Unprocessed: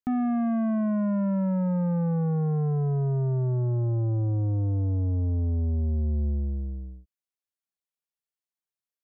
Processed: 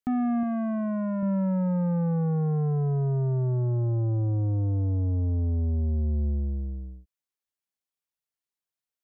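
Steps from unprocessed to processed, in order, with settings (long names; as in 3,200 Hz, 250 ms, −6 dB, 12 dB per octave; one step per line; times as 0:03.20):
0:00.43–0:01.23: low-shelf EQ 150 Hz −9.5 dB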